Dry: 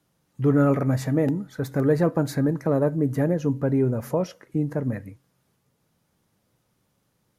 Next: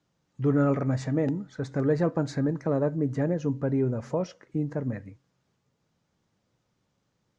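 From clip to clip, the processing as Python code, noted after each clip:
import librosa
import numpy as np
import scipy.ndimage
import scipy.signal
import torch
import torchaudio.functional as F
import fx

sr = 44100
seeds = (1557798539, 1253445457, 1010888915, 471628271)

y = scipy.signal.sosfilt(scipy.signal.butter(6, 7400.0, 'lowpass', fs=sr, output='sos'), x)
y = y * librosa.db_to_amplitude(-4.0)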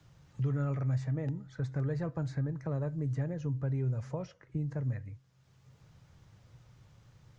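y = fx.curve_eq(x, sr, hz=(130.0, 210.0, 2800.0), db=(0, -16, -8))
y = fx.band_squash(y, sr, depth_pct=70)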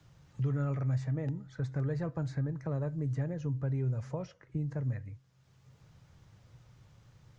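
y = x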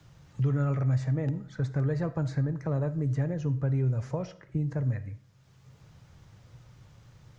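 y = fx.rev_freeverb(x, sr, rt60_s=0.57, hf_ratio=0.7, predelay_ms=15, drr_db=15.0)
y = y * librosa.db_to_amplitude(5.0)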